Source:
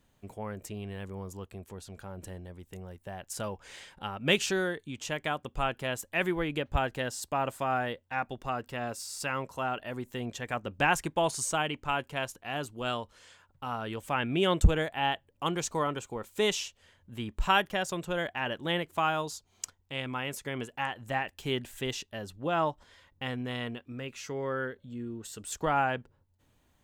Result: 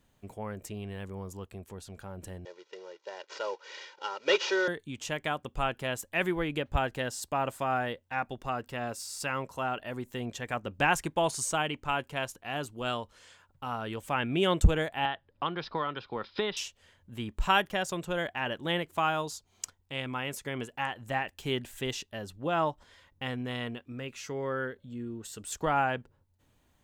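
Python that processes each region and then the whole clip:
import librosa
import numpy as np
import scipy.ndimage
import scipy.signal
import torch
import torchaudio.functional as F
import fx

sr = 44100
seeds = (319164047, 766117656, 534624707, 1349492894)

y = fx.chain(x, sr, fx.cvsd(bps=32000),
    fx.highpass(hz=340.0, slope=24),
    fx.comb(ms=2.1, depth=0.86), at=(2.45, 4.68))
y = fx.chain(y, sr, fx.cheby_ripple(hz=5200.0, ripple_db=6),
    fx.band_squash(depth_pct=100), at=(15.05, 16.57))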